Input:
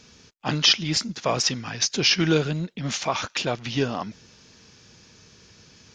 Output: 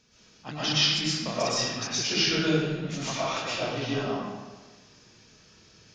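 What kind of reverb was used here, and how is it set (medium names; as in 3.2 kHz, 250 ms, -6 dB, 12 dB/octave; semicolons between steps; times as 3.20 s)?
algorithmic reverb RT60 1.3 s, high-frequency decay 0.75×, pre-delay 80 ms, DRR -10 dB; trim -13 dB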